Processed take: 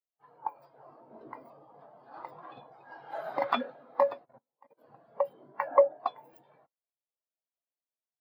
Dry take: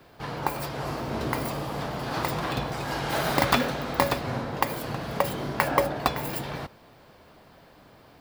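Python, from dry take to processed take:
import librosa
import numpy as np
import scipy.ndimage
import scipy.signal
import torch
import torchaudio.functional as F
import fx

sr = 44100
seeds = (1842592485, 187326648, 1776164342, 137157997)

y = fx.highpass(x, sr, hz=470.0, slope=6)
y = fx.level_steps(y, sr, step_db=17, at=(4.24, 4.77), fade=0.02)
y = fx.spectral_expand(y, sr, expansion=2.5)
y = y * 10.0 ** (-4.0 / 20.0)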